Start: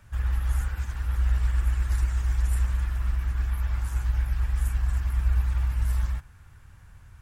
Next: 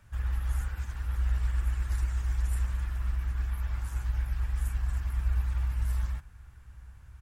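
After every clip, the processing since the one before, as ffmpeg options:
-filter_complex "[0:a]asplit=2[a][b];[b]adelay=1516,volume=-23dB,highshelf=f=4k:g=-34.1[c];[a][c]amix=inputs=2:normalize=0,volume=-4.5dB"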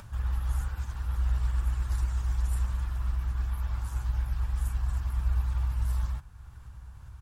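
-af "acompressor=mode=upward:threshold=-40dB:ratio=2.5,equalizer=f=125:t=o:w=1:g=4,equalizer=f=1k:t=o:w=1:g=5,equalizer=f=2k:t=o:w=1:g=-6,equalizer=f=4k:t=o:w=1:g=3"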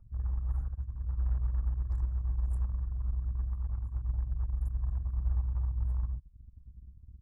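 -af "bandreject=f=1.5k:w=15,anlmdn=2.51,volume=-3dB"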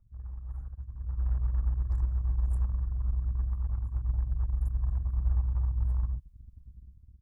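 -af "dynaudnorm=f=420:g=5:m=11dB,volume=-8dB"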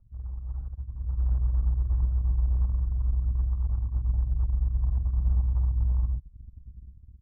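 -af "asoftclip=type=tanh:threshold=-20dB,lowpass=1k,volume=4.5dB"

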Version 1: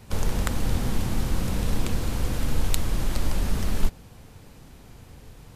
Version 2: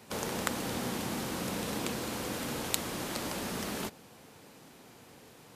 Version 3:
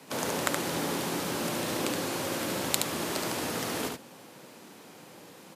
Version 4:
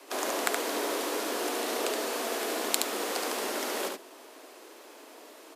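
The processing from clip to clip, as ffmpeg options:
-af "highpass=240,volume=-1dB"
-af "afreqshift=45,aecho=1:1:72:0.631,volume=3dB"
-af "afreqshift=130"

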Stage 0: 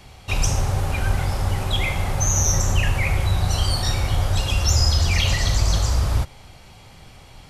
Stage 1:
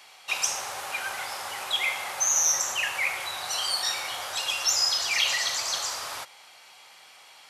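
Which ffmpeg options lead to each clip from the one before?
-af "highpass=950"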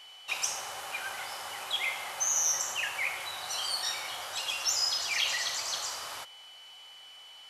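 -af "aeval=exprs='val(0)+0.00631*sin(2*PI*3000*n/s)':c=same,volume=-5dB"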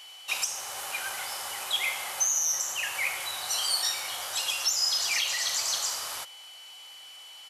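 -af "highshelf=f=5.6k:g=10.5,alimiter=limit=-17.5dB:level=0:latency=1:release=379,aresample=32000,aresample=44100,volume=1dB"

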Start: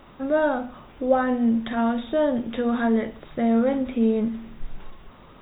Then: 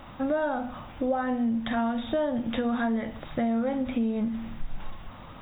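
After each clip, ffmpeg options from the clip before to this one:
-af "equalizer=f=100:t=o:w=0.33:g=7,equalizer=f=400:t=o:w=0.33:g=-11,equalizer=f=800:t=o:w=0.33:g=3,acompressor=threshold=-28dB:ratio=6,volume=3.5dB"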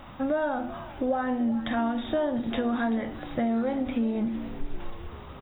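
-filter_complex "[0:a]asplit=6[a][b][c][d][e][f];[b]adelay=386,afreqshift=62,volume=-16.5dB[g];[c]adelay=772,afreqshift=124,volume=-21.9dB[h];[d]adelay=1158,afreqshift=186,volume=-27.2dB[i];[e]adelay=1544,afreqshift=248,volume=-32.6dB[j];[f]adelay=1930,afreqshift=310,volume=-37.9dB[k];[a][g][h][i][j][k]amix=inputs=6:normalize=0"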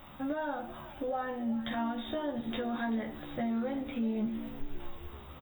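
-filter_complex "[0:a]aemphasis=mode=production:type=50fm,asplit=2[a][b];[b]adelay=14,volume=-3dB[c];[a][c]amix=inputs=2:normalize=0,volume=-8dB"

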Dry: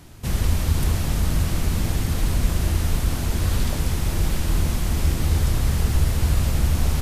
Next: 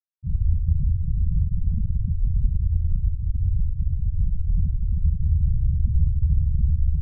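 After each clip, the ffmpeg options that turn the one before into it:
-af "afftfilt=real='re*gte(hypot(re,im),0.355)':imag='im*gte(hypot(re,im),0.355)':win_size=1024:overlap=0.75"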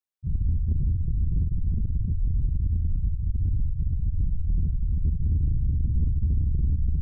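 -af "asoftclip=type=tanh:threshold=-17.5dB"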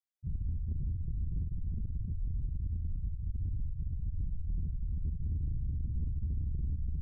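-af "alimiter=limit=-20.5dB:level=0:latency=1:release=495,volume=-8dB"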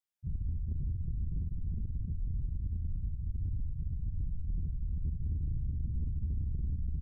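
-filter_complex "[0:a]asplit=5[a][b][c][d][e];[b]adelay=240,afreqshift=40,volume=-19dB[f];[c]adelay=480,afreqshift=80,volume=-25.2dB[g];[d]adelay=720,afreqshift=120,volume=-31.4dB[h];[e]adelay=960,afreqshift=160,volume=-37.6dB[i];[a][f][g][h][i]amix=inputs=5:normalize=0"

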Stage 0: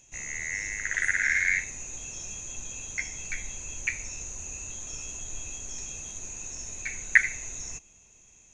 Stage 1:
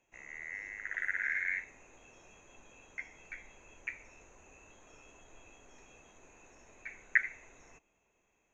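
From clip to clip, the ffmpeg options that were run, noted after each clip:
-filter_complex "[0:a]acrossover=split=270 2400:gain=0.2 1 0.0631[a][b][c];[a][b][c]amix=inputs=3:normalize=0,volume=-6dB"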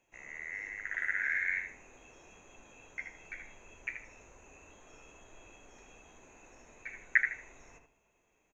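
-filter_complex "[0:a]asplit=2[a][b];[b]adelay=78,lowpass=f=2.4k:p=1,volume=-5dB,asplit=2[c][d];[d]adelay=78,lowpass=f=2.4k:p=1,volume=0.28,asplit=2[e][f];[f]adelay=78,lowpass=f=2.4k:p=1,volume=0.28,asplit=2[g][h];[h]adelay=78,lowpass=f=2.4k:p=1,volume=0.28[i];[a][c][e][g][i]amix=inputs=5:normalize=0,volume=1dB"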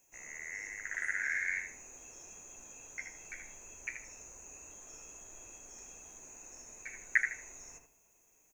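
-af "aexciter=amount=7.8:drive=4.8:freq=5.1k,volume=-2dB"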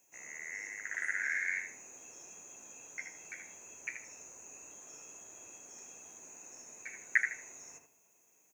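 -af "highpass=140"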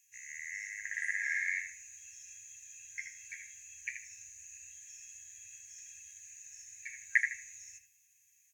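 -af "afftfilt=real='re*(1-between(b*sr/4096,110,1600))':imag='im*(1-between(b*sr/4096,110,1600))':win_size=4096:overlap=0.75,volume=1dB" -ar 44100 -c:a aac -b:a 64k

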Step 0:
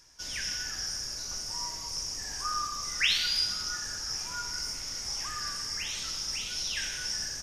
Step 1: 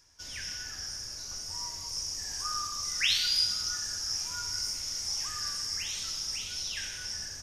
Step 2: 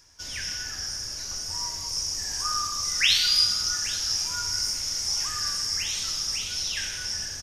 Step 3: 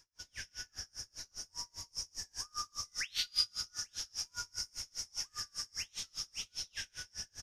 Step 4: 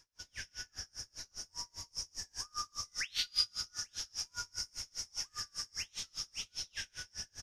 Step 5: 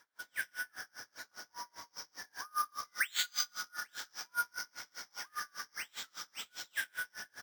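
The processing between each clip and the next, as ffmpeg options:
-filter_complex "[0:a]equalizer=f=89:t=o:w=0.26:g=11.5,acrossover=split=3400[a][b];[b]dynaudnorm=f=410:g=9:m=7dB[c];[a][c]amix=inputs=2:normalize=0,volume=-4.5dB"
-af "aecho=1:1:829:0.141,volume=6dB"
-af "aeval=exprs='val(0)*pow(10,-35*(0.5-0.5*cos(2*PI*5*n/s))/20)':c=same,volume=-7.5dB"
-af "highshelf=f=9.4k:g=-5,volume=1dB"
-af "highpass=370,equalizer=f=380:t=q:w=4:g=-6,equalizer=f=570:t=q:w=4:g=-3,equalizer=f=1.5k:t=q:w=4:g=6,equalizer=f=2.7k:t=q:w=4:g=-10,lowpass=f=3.7k:w=0.5412,lowpass=f=3.7k:w=1.3066,acrusher=samples=4:mix=1:aa=0.000001,volume=7.5dB"

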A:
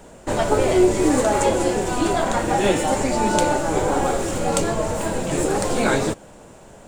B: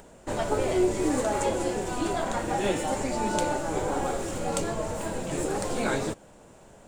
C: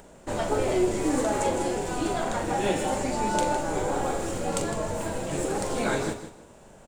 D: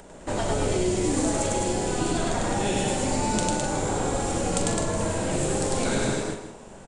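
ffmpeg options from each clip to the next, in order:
-af "acompressor=mode=upward:threshold=-40dB:ratio=2.5,volume=-8dB"
-filter_complex "[0:a]asplit=2[a][b];[b]adelay=42,volume=-9dB[c];[a][c]amix=inputs=2:normalize=0,aecho=1:1:158|316|474:0.282|0.0648|0.0149"
-filter_complex "[0:a]aecho=1:1:99.13|209.9:0.891|0.631,aresample=22050,aresample=44100,acrossover=split=230|3000[a][b][c];[b]acompressor=threshold=-29dB:ratio=6[d];[a][d][c]amix=inputs=3:normalize=0,volume=3dB"

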